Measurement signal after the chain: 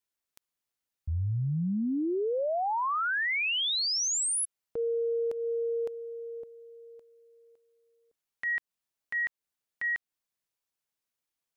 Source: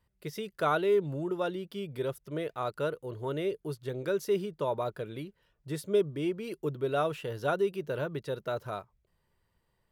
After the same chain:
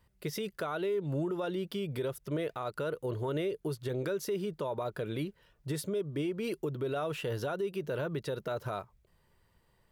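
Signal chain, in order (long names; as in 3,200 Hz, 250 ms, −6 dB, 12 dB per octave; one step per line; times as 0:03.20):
downward compressor 5 to 1, threshold −33 dBFS
brickwall limiter −32 dBFS
level +6 dB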